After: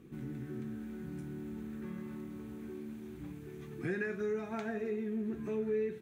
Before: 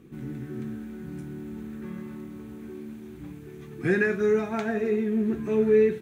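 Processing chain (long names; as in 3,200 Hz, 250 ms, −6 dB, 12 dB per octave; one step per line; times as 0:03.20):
downward compressor 2 to 1, threshold −35 dBFS, peak gain reduction 10.5 dB
level −4 dB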